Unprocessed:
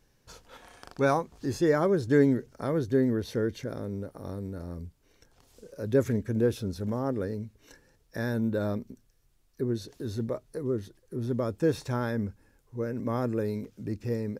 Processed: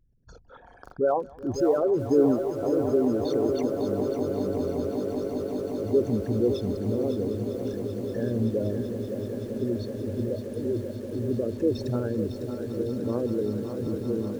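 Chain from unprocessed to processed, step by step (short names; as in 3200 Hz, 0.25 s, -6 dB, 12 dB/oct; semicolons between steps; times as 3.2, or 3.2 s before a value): formant sharpening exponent 3; swelling echo 0.191 s, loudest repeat 8, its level -15 dB; lo-fi delay 0.553 s, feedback 55%, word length 8-bit, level -8 dB; gain +1 dB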